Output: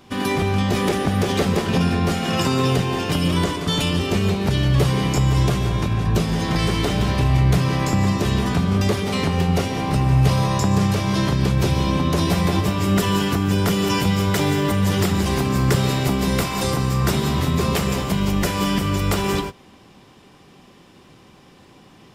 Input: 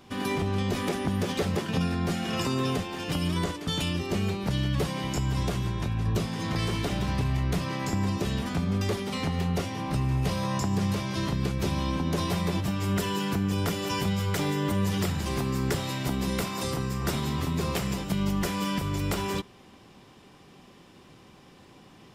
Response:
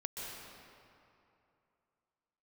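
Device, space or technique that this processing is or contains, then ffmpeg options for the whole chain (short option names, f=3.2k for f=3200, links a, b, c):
keyed gated reverb: -filter_complex "[0:a]asplit=3[a][b][c];[1:a]atrim=start_sample=2205[d];[b][d]afir=irnorm=-1:irlink=0[e];[c]apad=whole_len=976420[f];[e][f]sidechaingate=range=-33dB:threshold=-39dB:ratio=16:detection=peak,volume=-2dB[g];[a][g]amix=inputs=2:normalize=0,volume=4dB"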